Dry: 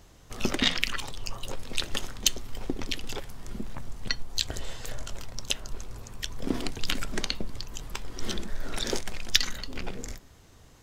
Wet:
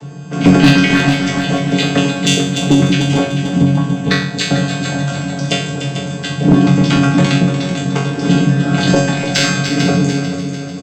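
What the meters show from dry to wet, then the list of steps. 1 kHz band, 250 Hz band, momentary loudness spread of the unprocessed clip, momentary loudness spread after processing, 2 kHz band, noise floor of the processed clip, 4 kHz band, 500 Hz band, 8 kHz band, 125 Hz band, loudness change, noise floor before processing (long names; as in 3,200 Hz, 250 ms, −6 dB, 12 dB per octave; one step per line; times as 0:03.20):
+20.0 dB, +26.5 dB, 16 LU, 9 LU, +17.5 dB, −25 dBFS, +11.0 dB, +21.0 dB, +10.0 dB, +28.0 dB, +18.0 dB, −54 dBFS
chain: channel vocoder with a chord as carrier minor triad, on D3
low-shelf EQ 170 Hz +11.5 dB
comb filter 7.1 ms, depth 45%
in parallel at −3.5 dB: soft clipping −23 dBFS, distortion −8 dB
on the sum: resonators tuned to a chord F#2 fifth, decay 0.59 s
gain into a clipping stage and back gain 32.5 dB
on a send: echo machine with several playback heads 148 ms, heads second and third, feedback 51%, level −10 dB
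on the sum: boost into a limiter +33.5 dB
level −1 dB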